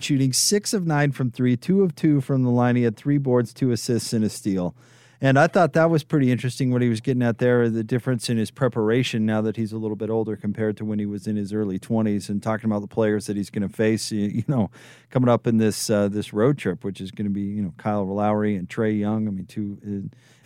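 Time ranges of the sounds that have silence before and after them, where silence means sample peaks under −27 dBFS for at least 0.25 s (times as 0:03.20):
0:05.22–0:14.66
0:15.15–0:20.07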